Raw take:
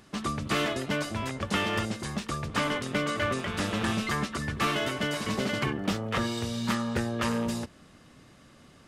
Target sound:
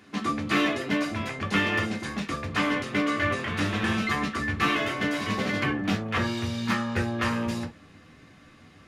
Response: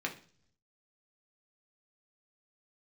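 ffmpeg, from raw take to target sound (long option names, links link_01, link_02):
-filter_complex "[0:a]asubboost=boost=4.5:cutoff=93[link_01];[1:a]atrim=start_sample=2205,atrim=end_sample=3087[link_02];[link_01][link_02]afir=irnorm=-1:irlink=0"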